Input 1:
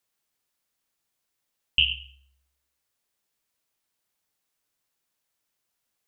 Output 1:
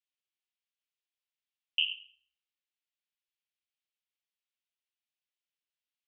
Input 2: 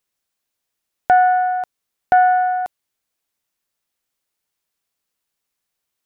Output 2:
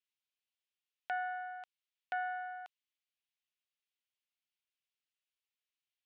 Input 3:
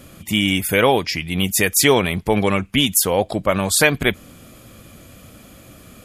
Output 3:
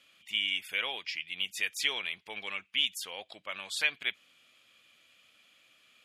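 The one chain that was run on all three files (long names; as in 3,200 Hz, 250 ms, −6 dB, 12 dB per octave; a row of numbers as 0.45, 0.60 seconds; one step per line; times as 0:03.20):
resonant band-pass 2,900 Hz, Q 2.1
level −7.5 dB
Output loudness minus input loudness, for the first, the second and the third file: −7.0, −24.0, −15.0 LU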